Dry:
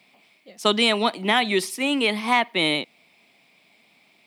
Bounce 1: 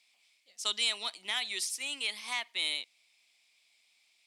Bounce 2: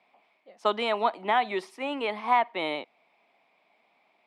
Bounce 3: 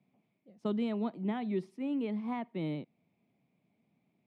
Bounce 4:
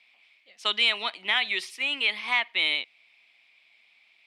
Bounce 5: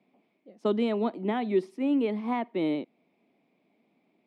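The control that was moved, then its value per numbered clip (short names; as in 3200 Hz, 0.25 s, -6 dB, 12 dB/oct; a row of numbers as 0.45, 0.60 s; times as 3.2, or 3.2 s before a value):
band-pass, frequency: 6900, 850, 120, 2600, 300 Hz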